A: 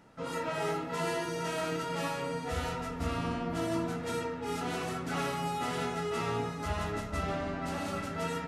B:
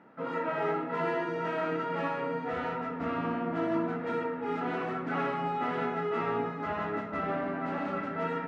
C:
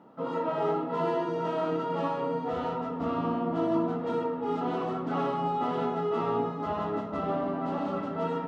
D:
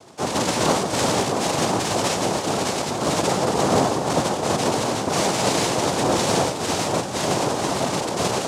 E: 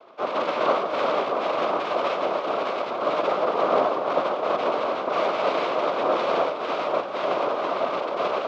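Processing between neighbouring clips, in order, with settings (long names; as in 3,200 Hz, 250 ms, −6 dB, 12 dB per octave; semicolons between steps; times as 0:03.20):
Chebyshev band-pass filter 220–1,800 Hz, order 2; level +3.5 dB
flat-topped bell 1,900 Hz −11.5 dB 1 octave; level +3 dB
cochlear-implant simulation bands 2; level +8 dB
loudspeaker in its box 480–3,000 Hz, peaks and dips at 600 Hz +5 dB, 840 Hz −6 dB, 1,200 Hz +6 dB, 1,800 Hz −8 dB, 2,900 Hz −3 dB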